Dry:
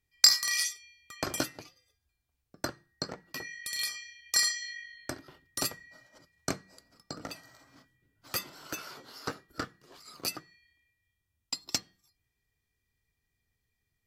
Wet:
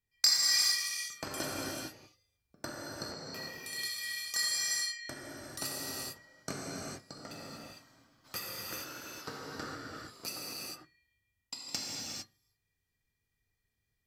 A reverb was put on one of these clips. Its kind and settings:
reverb whose tail is shaped and stops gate 480 ms flat, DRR −5 dB
level −8 dB

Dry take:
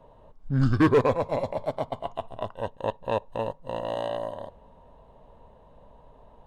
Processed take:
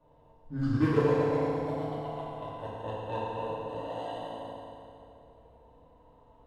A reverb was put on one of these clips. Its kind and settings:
feedback delay network reverb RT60 2.8 s, high-frequency decay 0.85×, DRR −9.5 dB
level −15 dB

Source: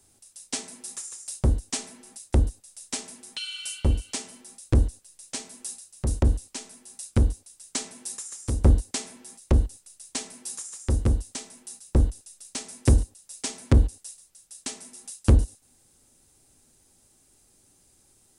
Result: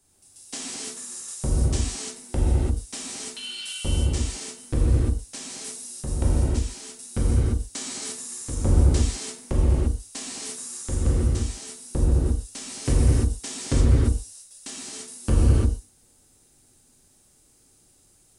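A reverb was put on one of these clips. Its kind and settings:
reverb whose tail is shaped and stops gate 370 ms flat, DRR −7 dB
level −6 dB

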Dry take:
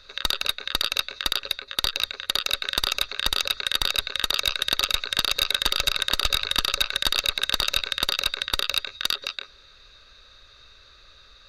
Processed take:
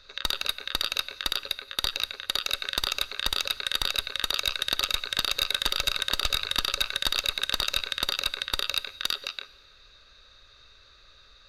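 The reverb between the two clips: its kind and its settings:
dense smooth reverb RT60 1.5 s, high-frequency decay 0.85×, DRR 17.5 dB
level −3.5 dB

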